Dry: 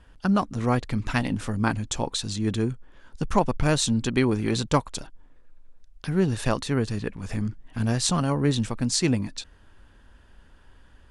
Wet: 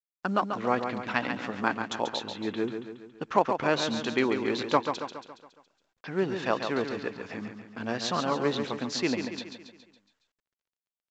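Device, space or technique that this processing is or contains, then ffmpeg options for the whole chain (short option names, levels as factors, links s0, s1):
telephone: -filter_complex "[0:a]asettb=1/sr,asplit=3[s0][s1][s2];[s0]atrim=end=2.194[s3];[s1]atrim=start=2.19:end=3.22,asetpts=PTS-STARTPTS,afade=t=in:d=0.004:c=qsin,afade=t=out:st=1.026:d=0.004:c=qsin,lowpass=f=3400:w=0.5412,lowpass=f=3400:w=1.3066[s4];[s2]atrim=start=3.216[s5];[s3][s4]acrossfade=d=0.004:c1=hsin:c2=qsin[s6];[s6][s5]acrossfade=d=0.004:c1=qsin:c2=hsin,agate=range=0.00631:threshold=0.00891:ratio=16:detection=peak,highpass=350,lowpass=3500,aecho=1:1:139|278|417|556|695|834:0.447|0.228|0.116|0.0593|0.0302|0.0154" -ar 16000 -c:a pcm_mulaw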